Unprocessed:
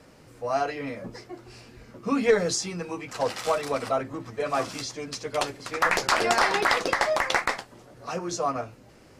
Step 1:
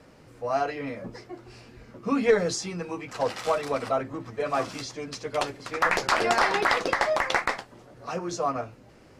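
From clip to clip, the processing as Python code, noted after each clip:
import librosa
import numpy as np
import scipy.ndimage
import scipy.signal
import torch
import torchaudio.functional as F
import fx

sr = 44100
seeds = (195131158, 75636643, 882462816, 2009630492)

y = fx.high_shelf(x, sr, hz=5200.0, db=-6.5)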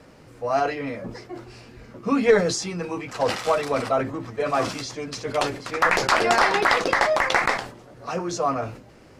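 y = fx.sustainer(x, sr, db_per_s=100.0)
y = y * 10.0 ** (3.5 / 20.0)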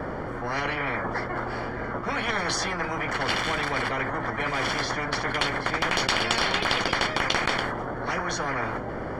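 y = scipy.signal.savgol_filter(x, 41, 4, mode='constant')
y = fx.spectral_comp(y, sr, ratio=10.0)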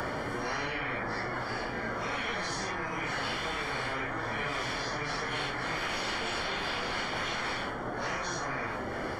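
y = fx.phase_scramble(x, sr, seeds[0], window_ms=200)
y = fx.band_squash(y, sr, depth_pct=100)
y = y * 10.0 ** (-7.5 / 20.0)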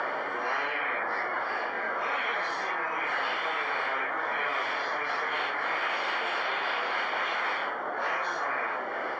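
y = fx.bandpass_edges(x, sr, low_hz=580.0, high_hz=2500.0)
y = y * 10.0 ** (6.0 / 20.0)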